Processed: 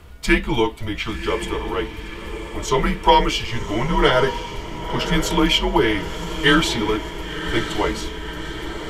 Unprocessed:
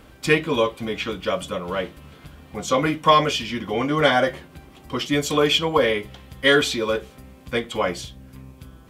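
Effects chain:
low shelf with overshoot 160 Hz +7.5 dB, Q 1.5
feedback delay with all-pass diffusion 1,045 ms, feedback 60%, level −10 dB
frequency shifter −120 Hz
level +1.5 dB

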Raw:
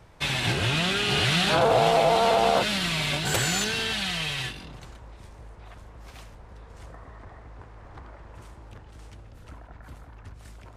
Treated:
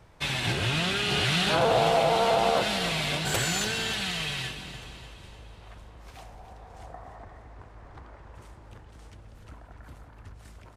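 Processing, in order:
0:06.17–0:07.24: parametric band 740 Hz +13.5 dB 0.41 octaves
on a send: repeating echo 295 ms, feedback 53%, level −11.5 dB
on the sum: level −2.5 dB

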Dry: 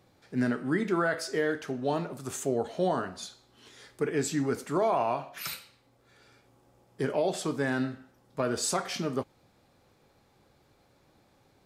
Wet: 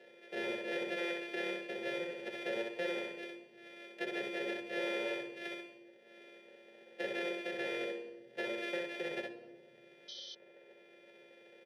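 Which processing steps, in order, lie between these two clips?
samples sorted by size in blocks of 128 samples
high-pass filter 130 Hz 12 dB per octave
hollow resonant body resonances 370/900/3,300 Hz, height 10 dB, ringing for 30 ms
on a send: repeating echo 63 ms, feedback 18%, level −3.5 dB
on the sum: rectangular room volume 3,900 cubic metres, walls furnished, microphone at 1.1 metres
in parallel at +1.5 dB: downward compressor, threshold −32 dBFS, peak gain reduction 14.5 dB
on the sum: sound drawn into the spectrogram noise, 0:10.08–0:10.35, 3,000–6,200 Hz −32 dBFS
formant filter e
low-shelf EQ 220 Hz −7.5 dB
mains-hum notches 50/100/150/200/250/300/350 Hz
notch comb filter 330 Hz
multiband upward and downward compressor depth 40%
level +3 dB

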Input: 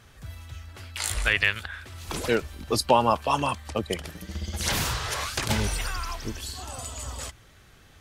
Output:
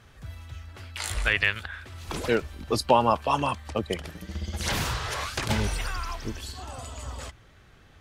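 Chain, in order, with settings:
high-shelf EQ 5,200 Hz −7 dB, from 0:06.52 −12 dB

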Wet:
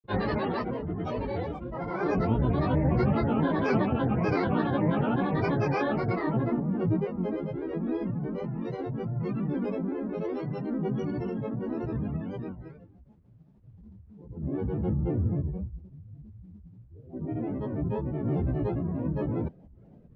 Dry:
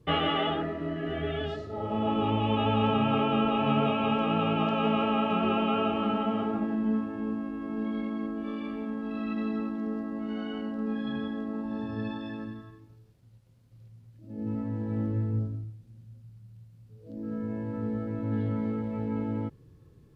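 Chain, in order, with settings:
low-pass filter 2,400 Hz 12 dB per octave
tilt shelving filter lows +5 dB, about 860 Hz
granular cloud, grains 27 per second, pitch spread up and down by 12 semitones

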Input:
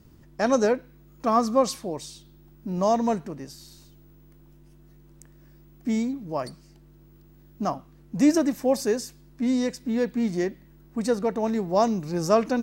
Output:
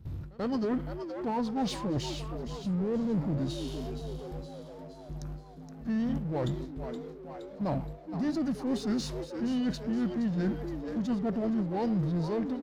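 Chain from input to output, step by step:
fade-out on the ending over 0.74 s
noise gate with hold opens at −44 dBFS
formants moved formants −4 semitones
healed spectral selection 0:02.82–0:03.27, 530–11,000 Hz
reversed playback
downward compressor 5 to 1, threshold −36 dBFS, peak gain reduction 18 dB
reversed playback
parametric band 85 Hz +13.5 dB 1.7 octaves
on a send: echo with shifted repeats 470 ms, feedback 48%, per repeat +110 Hz, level −12 dB
on the sum: power curve on the samples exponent 0.7
high-shelf EQ 4,900 Hz −11 dB
echo ahead of the sound 88 ms −23.5 dB
level +1.5 dB

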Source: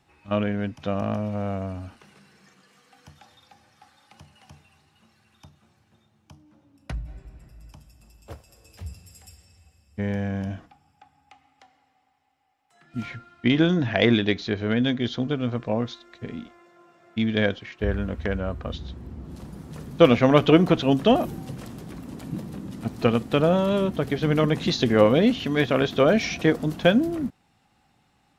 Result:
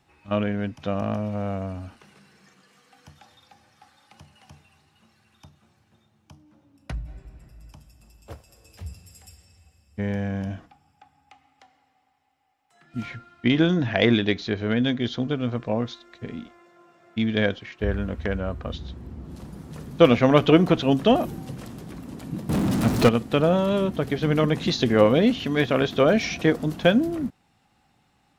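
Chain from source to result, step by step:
0:22.49–0:23.09: power curve on the samples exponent 0.5

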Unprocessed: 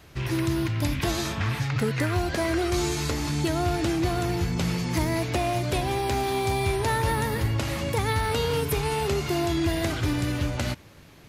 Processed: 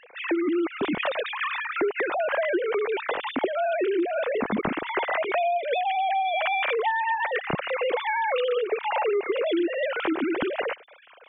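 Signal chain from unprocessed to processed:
three sine waves on the formant tracks
downward compressor, threshold −28 dBFS, peak gain reduction 11.5 dB
level +5.5 dB

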